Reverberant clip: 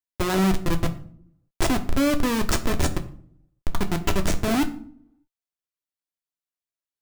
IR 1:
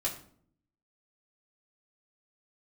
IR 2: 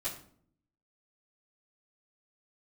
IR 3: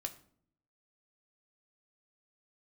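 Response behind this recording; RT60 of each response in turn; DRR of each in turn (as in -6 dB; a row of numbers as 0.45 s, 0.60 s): 3; 0.55 s, 0.55 s, 0.55 s; -4.0 dB, -14.0 dB, 5.0 dB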